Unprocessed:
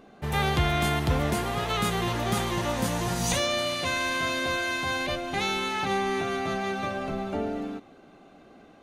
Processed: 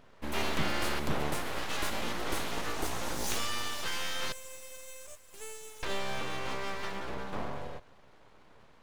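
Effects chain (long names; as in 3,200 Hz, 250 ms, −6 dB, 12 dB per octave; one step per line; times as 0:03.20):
0:04.32–0:05.83: inverse Chebyshev high-pass filter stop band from 660 Hz, stop band 80 dB
full-wave rectification
level −4 dB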